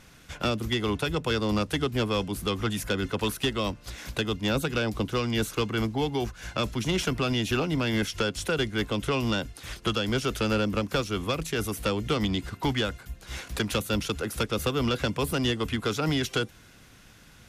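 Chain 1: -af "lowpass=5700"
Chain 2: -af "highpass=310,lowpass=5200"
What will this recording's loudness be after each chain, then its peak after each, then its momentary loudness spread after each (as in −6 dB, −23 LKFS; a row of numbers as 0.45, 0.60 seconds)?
−28.5, −30.5 LKFS; −17.5, −15.0 dBFS; 5, 5 LU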